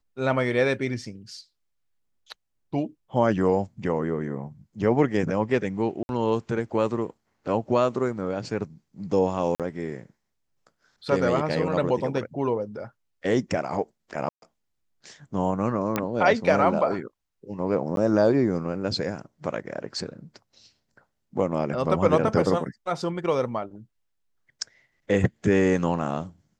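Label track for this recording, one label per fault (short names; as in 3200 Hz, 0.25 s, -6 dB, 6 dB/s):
6.030000	6.090000	gap 61 ms
9.550000	9.600000	gap 47 ms
14.290000	14.420000	gap 0.132 s
15.960000	15.960000	pop -10 dBFS
17.960000	17.970000	gap 12 ms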